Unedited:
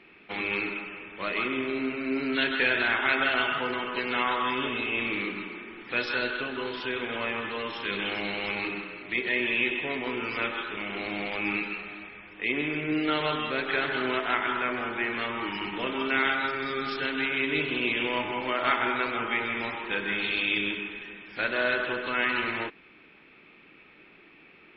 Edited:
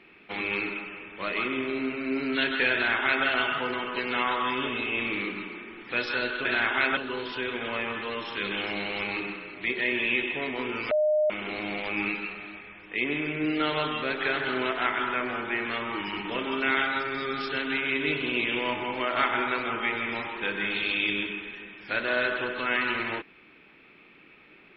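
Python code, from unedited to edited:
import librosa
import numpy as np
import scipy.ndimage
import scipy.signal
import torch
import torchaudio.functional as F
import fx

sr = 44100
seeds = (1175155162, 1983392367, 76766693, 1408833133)

y = fx.edit(x, sr, fx.duplicate(start_s=2.73, length_s=0.52, to_s=6.45),
    fx.bleep(start_s=10.39, length_s=0.39, hz=610.0, db=-20.0), tone=tone)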